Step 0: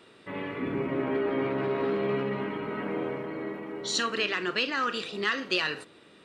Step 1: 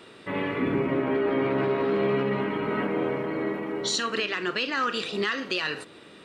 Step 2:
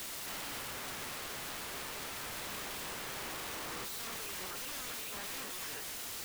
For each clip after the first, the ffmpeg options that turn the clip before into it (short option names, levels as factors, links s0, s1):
-af "alimiter=limit=0.0708:level=0:latency=1:release=348,volume=2.11"
-filter_complex "[0:a]asplit=2[s0][s1];[s1]highpass=f=720:p=1,volume=56.2,asoftclip=type=tanh:threshold=0.15[s2];[s0][s2]amix=inputs=2:normalize=0,lowpass=f=3700:p=1,volume=0.501,aeval=exprs='(mod(33.5*val(0)+1,2)-1)/33.5':c=same,volume=0.447"